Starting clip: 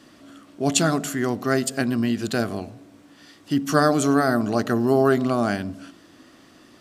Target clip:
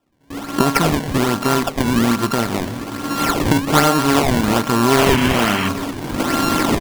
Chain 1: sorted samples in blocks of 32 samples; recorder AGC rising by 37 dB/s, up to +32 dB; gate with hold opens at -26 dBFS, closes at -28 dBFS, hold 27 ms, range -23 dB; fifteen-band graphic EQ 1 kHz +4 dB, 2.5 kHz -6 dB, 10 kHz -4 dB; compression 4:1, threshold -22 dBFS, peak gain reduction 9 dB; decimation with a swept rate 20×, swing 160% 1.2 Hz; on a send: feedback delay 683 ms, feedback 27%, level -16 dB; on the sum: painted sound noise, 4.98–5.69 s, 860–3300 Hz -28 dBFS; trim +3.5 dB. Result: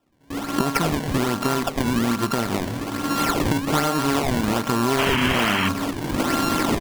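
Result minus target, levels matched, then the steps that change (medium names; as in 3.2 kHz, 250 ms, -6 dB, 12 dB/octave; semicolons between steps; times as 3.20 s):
compression: peak gain reduction +9 dB
remove: compression 4:1, threshold -22 dBFS, peak gain reduction 9 dB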